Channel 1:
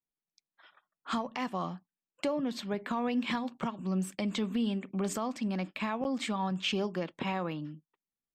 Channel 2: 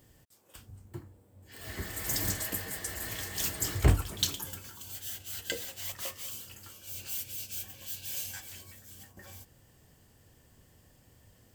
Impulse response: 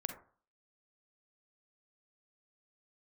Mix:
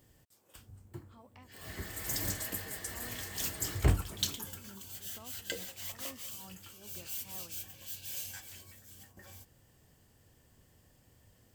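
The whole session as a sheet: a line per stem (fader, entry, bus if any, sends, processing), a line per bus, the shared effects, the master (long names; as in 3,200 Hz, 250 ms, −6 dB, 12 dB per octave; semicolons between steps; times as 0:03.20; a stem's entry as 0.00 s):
−19.0 dB, 0.00 s, no send, amplitude tremolo 2.3 Hz, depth 83%
−3.5 dB, 0.00 s, no send, no processing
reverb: not used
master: no processing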